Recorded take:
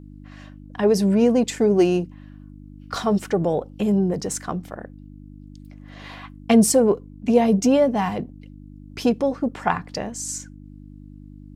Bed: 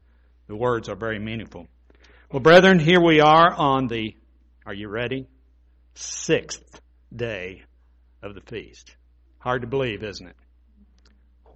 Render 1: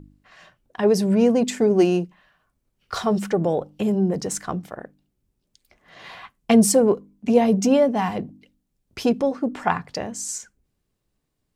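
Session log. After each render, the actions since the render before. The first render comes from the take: de-hum 50 Hz, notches 6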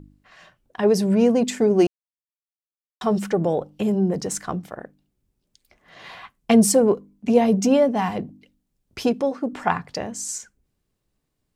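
1.87–3.01 mute; 9.08–9.53 low shelf 130 Hz -10.5 dB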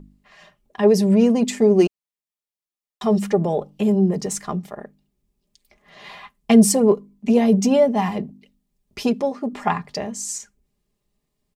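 notch 1500 Hz, Q 6.6; comb 4.9 ms, depth 52%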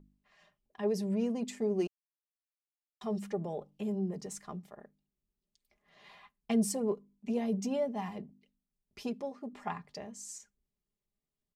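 gain -16.5 dB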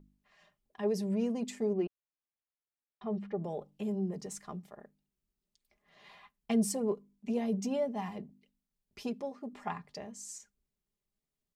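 1.73–3.44 air absorption 370 m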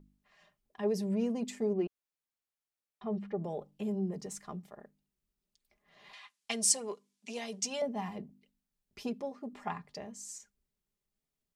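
6.13–7.82 weighting filter ITU-R 468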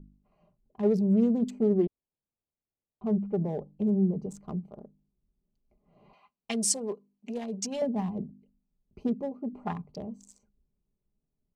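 Wiener smoothing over 25 samples; low shelf 460 Hz +11.5 dB

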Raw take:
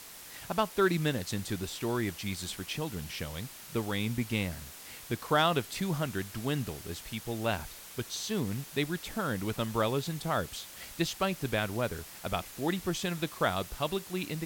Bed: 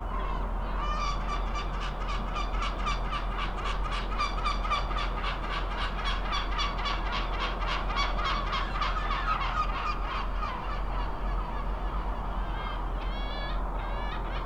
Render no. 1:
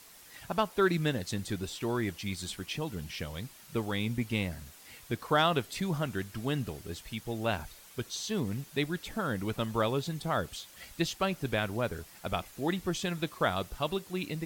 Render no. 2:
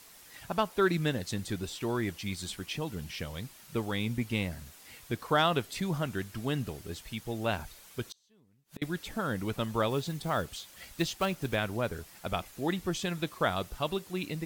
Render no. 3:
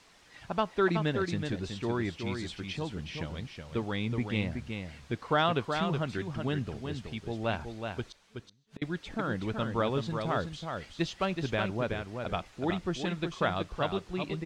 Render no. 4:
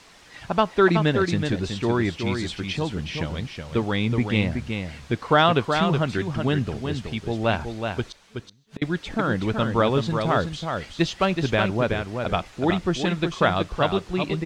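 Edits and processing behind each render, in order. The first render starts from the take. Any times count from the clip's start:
denoiser 7 dB, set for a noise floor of -48 dBFS
8.07–8.82 flipped gate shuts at -29 dBFS, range -33 dB; 9.91–11.58 block floating point 5-bit
air absorption 110 m; on a send: echo 0.373 s -6 dB
gain +9 dB

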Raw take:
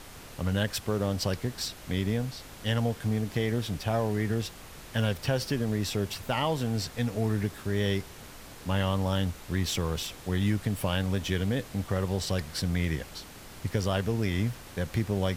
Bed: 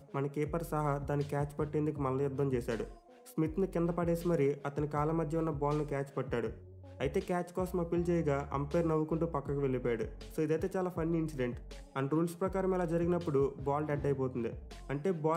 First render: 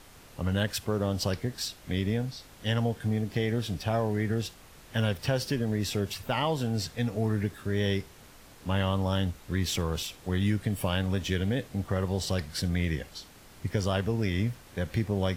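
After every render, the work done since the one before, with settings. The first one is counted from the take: noise print and reduce 6 dB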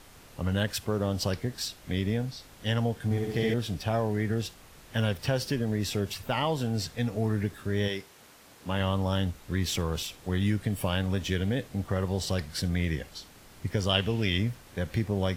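3.04–3.54 flutter echo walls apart 11.5 m, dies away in 1.3 s; 7.87–8.79 HPF 520 Hz -> 120 Hz 6 dB/oct; 13.89–14.38 bell 3000 Hz +14 dB 0.63 oct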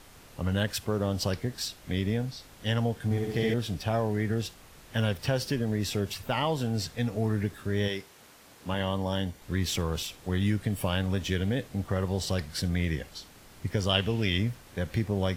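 8.74–9.42 notch comb 1300 Hz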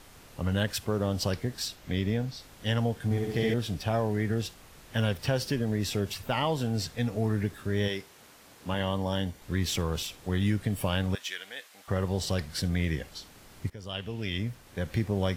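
1.75–2.35 bell 10000 Hz -6 dB 0.55 oct; 11.15–11.88 HPF 1200 Hz; 13.7–14.97 fade in, from -18.5 dB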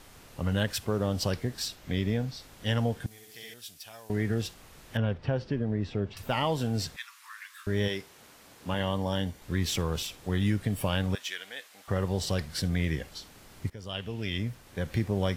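3.06–4.1 pre-emphasis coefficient 0.97; 4.97–6.17 tape spacing loss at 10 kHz 34 dB; 6.96–7.67 steep high-pass 1000 Hz 96 dB/oct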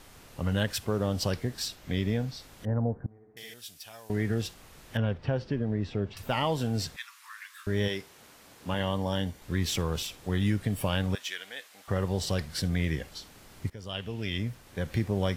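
2.65–3.37 Gaussian blur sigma 7.8 samples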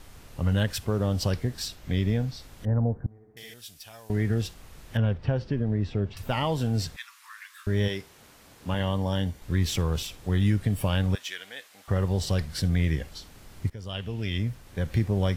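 low shelf 110 Hz +10 dB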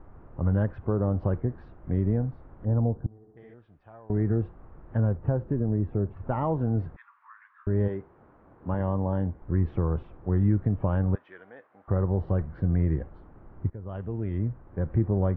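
LPF 1300 Hz 24 dB/oct; bell 340 Hz +5.5 dB 0.24 oct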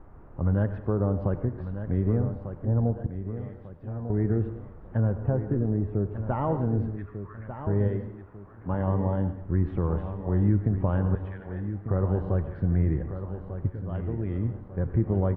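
on a send: feedback echo 1.196 s, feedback 39%, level -10 dB; on the sum: plate-style reverb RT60 0.61 s, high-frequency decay 1×, pre-delay 80 ms, DRR 10.5 dB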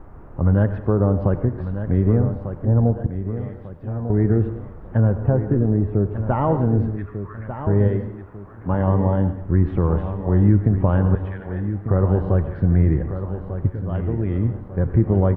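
gain +7.5 dB

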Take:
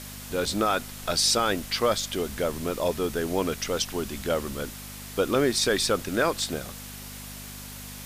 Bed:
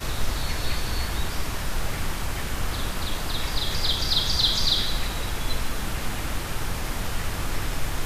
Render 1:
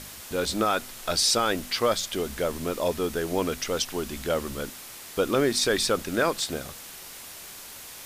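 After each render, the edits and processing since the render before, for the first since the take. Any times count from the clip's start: de-hum 50 Hz, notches 5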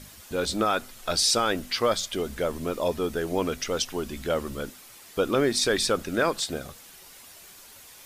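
denoiser 8 dB, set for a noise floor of -43 dBFS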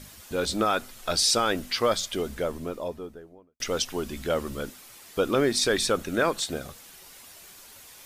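2.1–3.6 studio fade out; 5.78–6.5 notch 4900 Hz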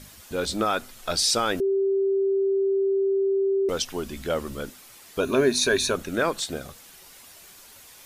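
1.6–3.69 bleep 390 Hz -19.5 dBFS; 5.2–5.95 ripple EQ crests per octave 1.5, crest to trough 12 dB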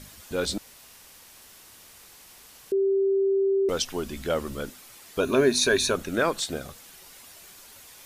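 0.58–2.72 room tone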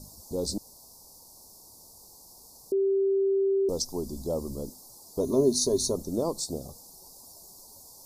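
dynamic EQ 770 Hz, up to -5 dB, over -40 dBFS, Q 1.3; elliptic band-stop 930–4700 Hz, stop band 40 dB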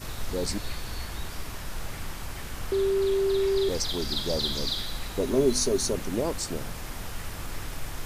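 add bed -8 dB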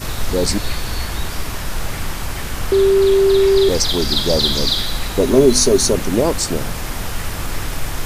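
gain +12 dB; limiter -1 dBFS, peak gain reduction 1.5 dB

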